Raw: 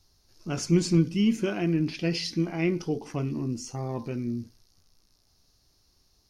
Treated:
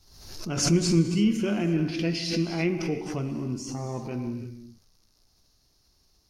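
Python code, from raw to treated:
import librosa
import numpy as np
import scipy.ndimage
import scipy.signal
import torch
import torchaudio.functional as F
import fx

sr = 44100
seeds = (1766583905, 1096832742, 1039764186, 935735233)

y = fx.rev_gated(x, sr, seeds[0], gate_ms=370, shape='flat', drr_db=6.5)
y = fx.pre_swell(y, sr, db_per_s=61.0)
y = y * librosa.db_to_amplitude(-1.0)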